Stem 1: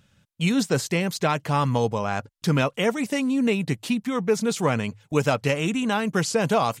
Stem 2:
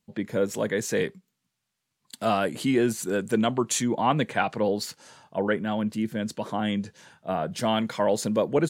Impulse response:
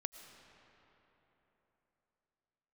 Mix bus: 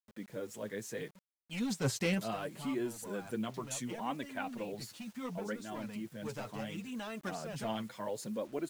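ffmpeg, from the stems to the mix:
-filter_complex "[0:a]bandreject=frequency=400:width=13,asoftclip=type=hard:threshold=-19dB,adelay=1100,volume=-2dB[link_01];[1:a]adynamicequalizer=threshold=0.00501:dfrequency=7900:dqfactor=0.7:tfrequency=7900:tqfactor=0.7:attack=5:release=100:ratio=0.375:range=2.5:mode=boostabove:tftype=highshelf,volume=-12dB,asplit=2[link_02][link_03];[link_03]apad=whole_len=348403[link_04];[link_01][link_04]sidechaincompress=threshold=-48dB:ratio=16:attack=7.4:release=911[link_05];[link_05][link_02]amix=inputs=2:normalize=0,flanger=delay=2.9:depth=6.9:regen=9:speed=0.7:shape=sinusoidal,acrusher=bits=9:mix=0:aa=0.000001"

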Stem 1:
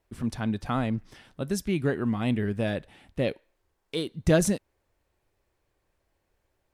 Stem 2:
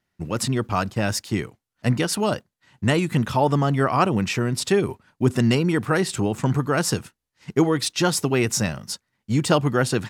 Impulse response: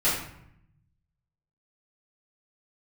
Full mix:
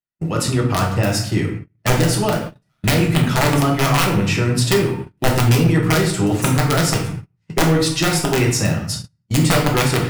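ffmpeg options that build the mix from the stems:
-filter_complex "[0:a]volume=25dB,asoftclip=hard,volume=-25dB,aderivative,adelay=2000,volume=-1.5dB,asplit=2[link_01][link_02];[link_02]volume=-6dB[link_03];[1:a]acrossover=split=140[link_04][link_05];[link_05]acompressor=threshold=-27dB:ratio=1.5[link_06];[link_04][link_06]amix=inputs=2:normalize=0,aeval=exprs='(mod(4.73*val(0)+1,2)-1)/4.73':channel_layout=same,volume=1.5dB,asplit=2[link_07][link_08];[link_08]volume=-9.5dB[link_09];[2:a]atrim=start_sample=2205[link_10];[link_03][link_09]amix=inputs=2:normalize=0[link_11];[link_11][link_10]afir=irnorm=-1:irlink=0[link_12];[link_01][link_07][link_12]amix=inputs=3:normalize=0,agate=range=-30dB:threshold=-26dB:ratio=16:detection=peak,asoftclip=type=hard:threshold=-8.5dB"

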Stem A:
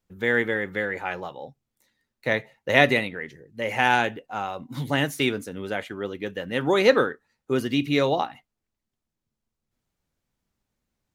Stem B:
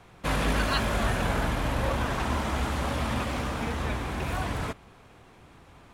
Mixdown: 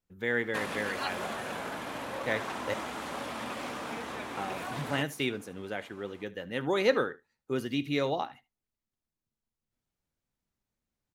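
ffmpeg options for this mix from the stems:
ffmpeg -i stem1.wav -i stem2.wav -filter_complex "[0:a]volume=-7.5dB,asplit=3[link_01][link_02][link_03];[link_01]atrim=end=2.74,asetpts=PTS-STARTPTS,afade=type=out:start_time=2.736:duration=0.004:curve=hsin[link_04];[link_02]atrim=start=2.74:end=4.37,asetpts=PTS-STARTPTS,volume=0[link_05];[link_03]atrim=start=4.37,asetpts=PTS-STARTPTS,afade=type=in:duration=0.004:curve=hsin[link_06];[link_04][link_05][link_06]concat=n=3:v=0:a=1,asplit=2[link_07][link_08];[link_08]volume=-20dB[link_09];[1:a]acompressor=threshold=-28dB:ratio=4,highpass=260,adelay=300,volume=-2.5dB[link_10];[link_09]aecho=0:1:75:1[link_11];[link_07][link_10][link_11]amix=inputs=3:normalize=0" out.wav

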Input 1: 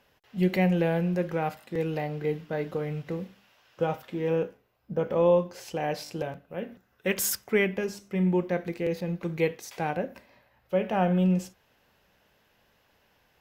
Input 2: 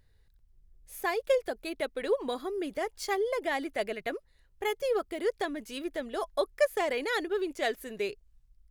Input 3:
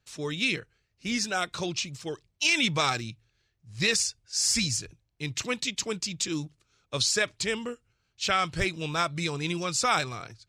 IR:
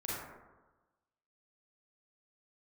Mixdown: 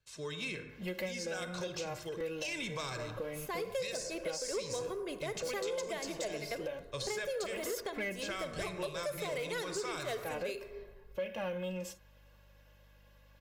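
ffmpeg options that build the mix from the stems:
-filter_complex "[0:a]aecho=1:1:3.6:0.73,aeval=exprs='val(0)+0.00112*(sin(2*PI*50*n/s)+sin(2*PI*2*50*n/s)/2+sin(2*PI*3*50*n/s)/3+sin(2*PI*4*50*n/s)/4+sin(2*PI*5*50*n/s)/5)':channel_layout=same,adelay=450,volume=-4dB[link_01];[1:a]bandreject=frequency=1700:width=12,tremolo=f=5.2:d=0.51,adelay=2450,volume=1dB,asplit=2[link_02][link_03];[link_03]volume=-13dB[link_04];[2:a]volume=-8.5dB,asplit=3[link_05][link_06][link_07];[link_06]volume=-9.5dB[link_08];[link_07]apad=whole_len=611305[link_09];[link_01][link_09]sidechaincompress=threshold=-41dB:ratio=8:attack=11:release=329[link_10];[3:a]atrim=start_sample=2205[link_11];[link_04][link_08]amix=inputs=2:normalize=0[link_12];[link_12][link_11]afir=irnorm=-1:irlink=0[link_13];[link_10][link_02][link_05][link_13]amix=inputs=4:normalize=0,aecho=1:1:1.9:0.47,acrossover=split=490|2100|7200[link_14][link_15][link_16][link_17];[link_14]acompressor=threshold=-41dB:ratio=4[link_18];[link_15]acompressor=threshold=-40dB:ratio=4[link_19];[link_16]acompressor=threshold=-44dB:ratio=4[link_20];[link_17]acompressor=threshold=-48dB:ratio=4[link_21];[link_18][link_19][link_20][link_21]amix=inputs=4:normalize=0,asoftclip=type=tanh:threshold=-28.5dB"

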